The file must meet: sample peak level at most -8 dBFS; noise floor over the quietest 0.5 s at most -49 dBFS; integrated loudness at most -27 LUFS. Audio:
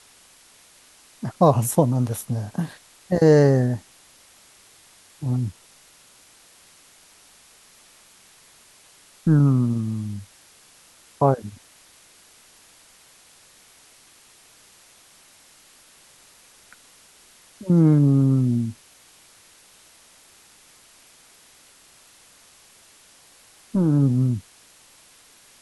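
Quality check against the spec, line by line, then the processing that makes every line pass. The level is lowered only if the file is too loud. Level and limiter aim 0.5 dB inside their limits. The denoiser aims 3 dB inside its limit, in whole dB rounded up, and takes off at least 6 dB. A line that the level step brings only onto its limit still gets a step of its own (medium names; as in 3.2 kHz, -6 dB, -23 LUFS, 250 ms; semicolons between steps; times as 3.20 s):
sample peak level -4.0 dBFS: fail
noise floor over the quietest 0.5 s -53 dBFS: pass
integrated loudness -21.0 LUFS: fail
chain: trim -6.5 dB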